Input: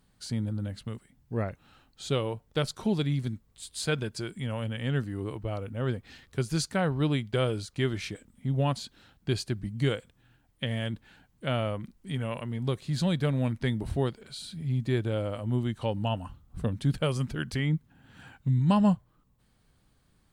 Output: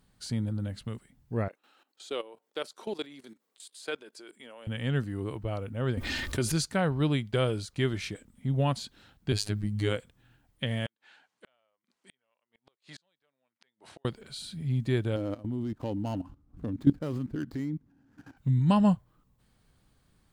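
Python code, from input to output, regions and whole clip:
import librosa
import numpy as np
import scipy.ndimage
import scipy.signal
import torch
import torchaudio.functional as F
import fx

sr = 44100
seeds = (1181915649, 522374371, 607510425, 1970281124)

y = fx.chain(x, sr, fx.highpass(hz=310.0, slope=24),
    fx.level_steps(step_db=16), at=(1.48, 4.67))
y = fx.chain(y, sr, fx.comb(ms=3.3, depth=0.49),
    fx.env_flatten(amount_pct=70), at=(5.97, 6.52))
y = fx.chain(y, sr, fx.robotise(hz=104.0),
    fx.env_flatten(amount_pct=50), at=(9.32, 9.97))
y = fx.chain(y, sr, fx.bandpass_edges(low_hz=630.0, high_hz=7100.0),
    fx.gate_flip(shuts_db=-34.0, range_db=-40), at=(10.86, 14.05))
y = fx.chain(y, sr, fx.median_filter(points=15),
    fx.peak_eq(hz=290.0, db=14.0, octaves=0.5),
    fx.level_steps(step_db=16), at=(15.16, 18.37))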